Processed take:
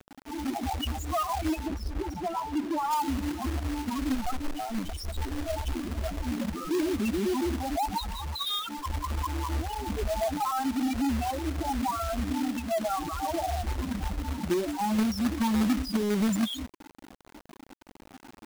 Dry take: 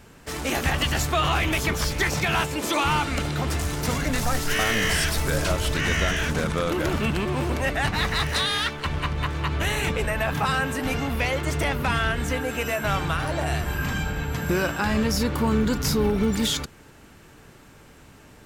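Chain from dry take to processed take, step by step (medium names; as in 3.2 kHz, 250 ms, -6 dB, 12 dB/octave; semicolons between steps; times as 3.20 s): rattle on loud lows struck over -34 dBFS, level -30 dBFS; saturation -14 dBFS, distortion -23 dB; bass shelf 130 Hz -7 dB; static phaser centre 490 Hz, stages 6; peak limiter -24.5 dBFS, peak gain reduction 8.5 dB; loudest bins only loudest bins 4; companded quantiser 4-bit; 1.66–2.91 s: treble shelf 3.5 kHz -9.5 dB; trim +7.5 dB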